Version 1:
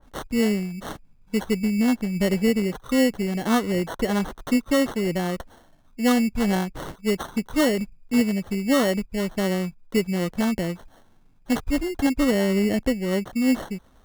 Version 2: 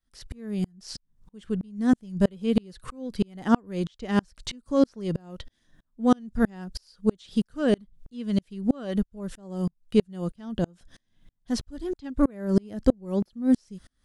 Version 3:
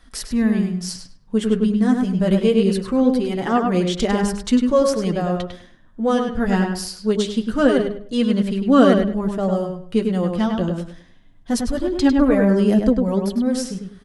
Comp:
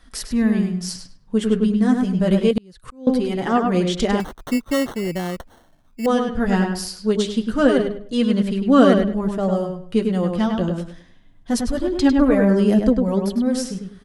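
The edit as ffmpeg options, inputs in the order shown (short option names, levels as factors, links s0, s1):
-filter_complex "[2:a]asplit=3[s0][s1][s2];[s0]atrim=end=2.512[s3];[1:a]atrim=start=2.508:end=3.072[s4];[s1]atrim=start=3.068:end=4.202[s5];[0:a]atrim=start=4.198:end=6.062[s6];[s2]atrim=start=6.058[s7];[s3][s4]acrossfade=d=0.004:c1=hsin:c2=hsin[s8];[s8][s5]acrossfade=d=0.004:c1=hsin:c2=hsin[s9];[s9][s6]acrossfade=d=0.004:c1=hsin:c2=hsin[s10];[s10][s7]acrossfade=d=0.004:c1=hsin:c2=hsin"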